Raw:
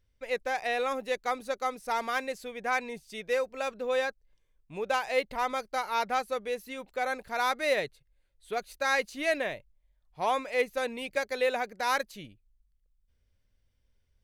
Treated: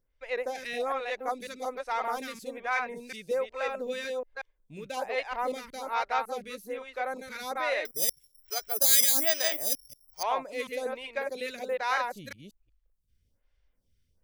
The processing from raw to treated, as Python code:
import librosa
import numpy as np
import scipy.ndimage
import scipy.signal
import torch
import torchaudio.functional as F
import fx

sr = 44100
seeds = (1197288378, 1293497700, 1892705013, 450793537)

y = fx.reverse_delay(x, sr, ms=184, wet_db=-3)
y = fx.rider(y, sr, range_db=3, speed_s=2.0)
y = fx.resample_bad(y, sr, factor=8, down='filtered', up='zero_stuff', at=(7.85, 10.23))
y = fx.stagger_phaser(y, sr, hz=1.2)
y = y * 10.0 ** (-1.0 / 20.0)